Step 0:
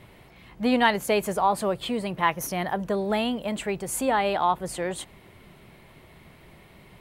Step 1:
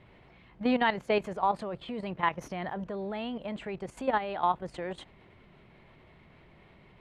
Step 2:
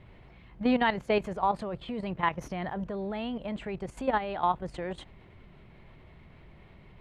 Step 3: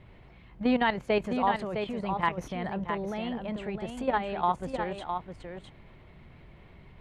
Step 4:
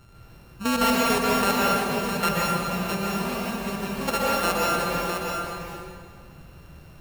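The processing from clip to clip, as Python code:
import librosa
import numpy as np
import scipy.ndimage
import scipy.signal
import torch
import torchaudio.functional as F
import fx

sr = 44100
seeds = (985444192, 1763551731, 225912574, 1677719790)

y1 = scipy.signal.sosfilt(scipy.signal.butter(2, 3400.0, 'lowpass', fs=sr, output='sos'), x)
y1 = fx.level_steps(y1, sr, step_db=11)
y1 = F.gain(torch.from_numpy(y1), -2.0).numpy()
y2 = fx.low_shelf(y1, sr, hz=110.0, db=11.0)
y3 = y2 + 10.0 ** (-6.5 / 20.0) * np.pad(y2, (int(659 * sr / 1000.0), 0))[:len(y2)]
y4 = np.r_[np.sort(y3[:len(y3) // 32 * 32].reshape(-1, 32), axis=1).ravel(), y3[len(y3) // 32 * 32:]]
y4 = fx.rev_plate(y4, sr, seeds[0], rt60_s=1.9, hf_ratio=0.7, predelay_ms=110, drr_db=-5.0)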